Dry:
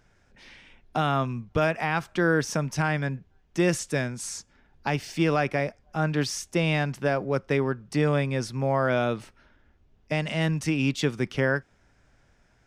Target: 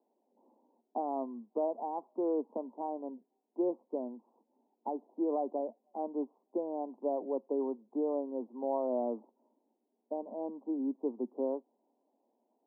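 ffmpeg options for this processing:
ffmpeg -i in.wav -af "asuperpass=centerf=470:order=20:qfactor=0.61,volume=-7dB" out.wav

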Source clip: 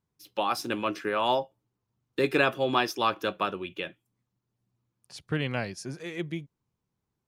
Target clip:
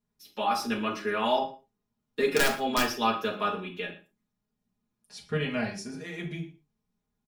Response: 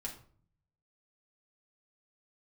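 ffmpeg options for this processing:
-filter_complex "[0:a]aecho=1:1:4.8:0.53,asettb=1/sr,asplit=3[link_01][link_02][link_03];[link_01]atrim=end=2.304[link_04];[link_02]atrim=start=2.3:end=2.88,asetpts=PTS-STARTPTS,afade=type=in:duration=0.004:curve=qsin,afade=type=out:start_time=0.576:duration=0.004:curve=qsin,aeval=exprs='(mod(3.98*val(0)+1,2)-1)/3.98':channel_layout=same[link_05];[link_03]atrim=start=2.876[link_06];[link_04][link_05]acrossfade=duration=0.004:curve1=hsin:curve2=qsin[link_07];[link_07][link_06]acrossfade=duration=0.004:curve1=qsin:curve2=hsin,asplit=2[link_08][link_09];[link_09]adelay=116.6,volume=-19dB,highshelf=frequency=4000:gain=-2.62[link_10];[link_08][link_10]amix=inputs=2:normalize=0[link_11];[1:a]atrim=start_sample=2205,atrim=end_sample=6174[link_12];[link_11][link_12]afir=irnorm=-1:irlink=0"

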